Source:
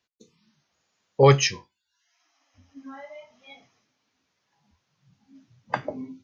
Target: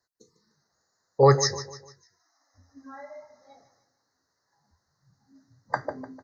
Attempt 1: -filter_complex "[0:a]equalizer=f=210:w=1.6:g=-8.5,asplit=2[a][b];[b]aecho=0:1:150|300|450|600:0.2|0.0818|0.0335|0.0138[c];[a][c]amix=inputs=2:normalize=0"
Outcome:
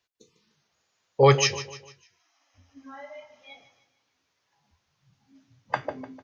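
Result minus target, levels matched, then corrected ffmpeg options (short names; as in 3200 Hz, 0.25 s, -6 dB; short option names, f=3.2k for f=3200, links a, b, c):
2000 Hz band +4.5 dB
-filter_complex "[0:a]asuperstop=centerf=2800:order=12:qfactor=1.4,equalizer=f=210:w=1.6:g=-8.5,asplit=2[a][b];[b]aecho=0:1:150|300|450|600:0.2|0.0818|0.0335|0.0138[c];[a][c]amix=inputs=2:normalize=0"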